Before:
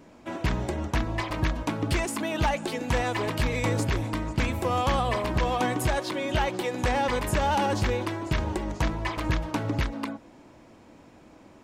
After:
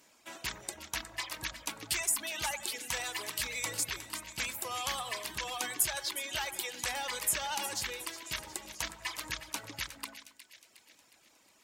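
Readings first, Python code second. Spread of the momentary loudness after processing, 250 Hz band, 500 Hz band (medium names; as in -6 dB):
10 LU, -22.0 dB, -17.0 dB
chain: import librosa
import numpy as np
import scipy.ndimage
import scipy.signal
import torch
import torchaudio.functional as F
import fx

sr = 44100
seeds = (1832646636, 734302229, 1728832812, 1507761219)

y = fx.dereverb_blind(x, sr, rt60_s=1.2)
y = librosa.effects.preemphasis(y, coef=0.97, zi=[0.0])
y = fx.echo_split(y, sr, split_hz=1800.0, low_ms=91, high_ms=362, feedback_pct=52, wet_db=-12.0)
y = fx.cheby_harmonics(y, sr, harmonics=(4,), levels_db=(-35,), full_scale_db=-19.0)
y = y * 10.0 ** (6.5 / 20.0)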